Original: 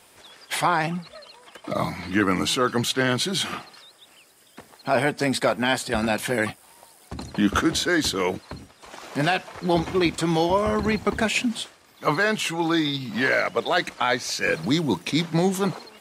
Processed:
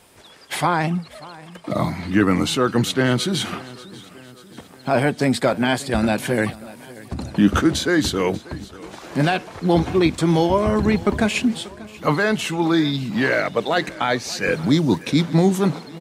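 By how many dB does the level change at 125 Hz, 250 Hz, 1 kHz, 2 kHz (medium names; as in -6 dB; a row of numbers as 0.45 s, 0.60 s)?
+7.0 dB, +5.5 dB, +1.5 dB, +0.5 dB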